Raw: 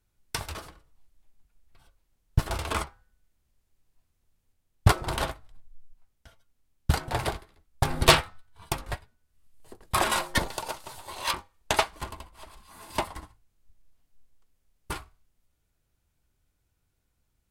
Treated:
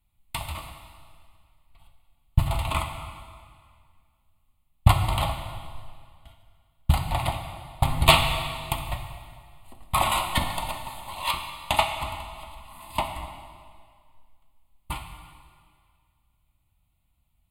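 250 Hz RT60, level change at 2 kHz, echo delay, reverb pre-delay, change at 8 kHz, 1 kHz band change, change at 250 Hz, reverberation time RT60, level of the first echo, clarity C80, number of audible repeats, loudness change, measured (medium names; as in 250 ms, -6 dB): 2.0 s, +0.5 dB, no echo, 5 ms, -1.0 dB, +3.5 dB, +0.5 dB, 2.0 s, no echo, 7.0 dB, no echo, +2.0 dB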